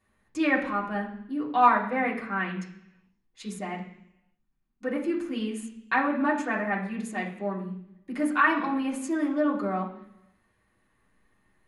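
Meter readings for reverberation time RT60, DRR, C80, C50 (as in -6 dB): 0.70 s, -4.5 dB, 11.0 dB, 8.0 dB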